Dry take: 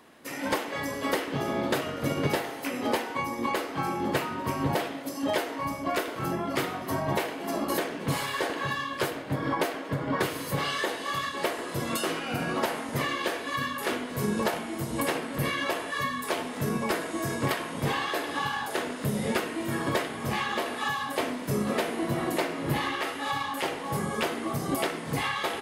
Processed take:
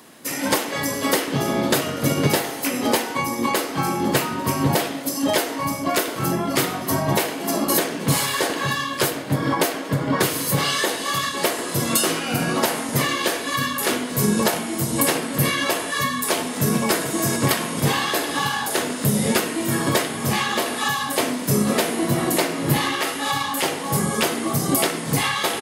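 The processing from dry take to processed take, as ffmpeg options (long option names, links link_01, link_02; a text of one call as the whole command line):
ffmpeg -i in.wav -filter_complex "[0:a]asplit=2[link_01][link_02];[link_02]afade=type=in:start_time=16.21:duration=0.01,afade=type=out:start_time=16.92:duration=0.01,aecho=0:1:440|880|1320|1760|2200|2640|3080|3520|3960:0.237137|0.165996|0.116197|0.0813381|0.0569367|0.0398557|0.027899|0.0195293|0.0136705[link_03];[link_01][link_03]amix=inputs=2:normalize=0,highpass=110,bass=frequency=250:gain=5,treble=frequency=4000:gain=10,volume=6dB" out.wav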